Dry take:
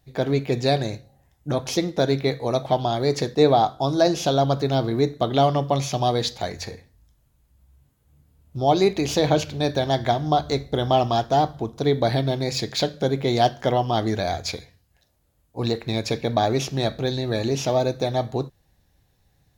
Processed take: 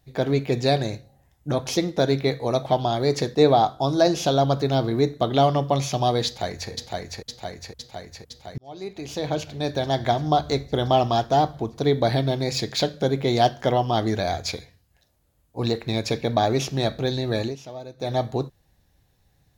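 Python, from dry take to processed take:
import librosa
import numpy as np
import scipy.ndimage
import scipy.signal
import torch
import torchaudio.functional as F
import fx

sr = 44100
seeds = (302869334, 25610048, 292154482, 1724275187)

y = fx.echo_throw(x, sr, start_s=6.26, length_s=0.45, ms=510, feedback_pct=70, wet_db=-2.5)
y = fx.edit(y, sr, fx.fade_in_span(start_s=8.58, length_s=1.6),
    fx.fade_down_up(start_s=17.41, length_s=0.71, db=-16.0, fade_s=0.15), tone=tone)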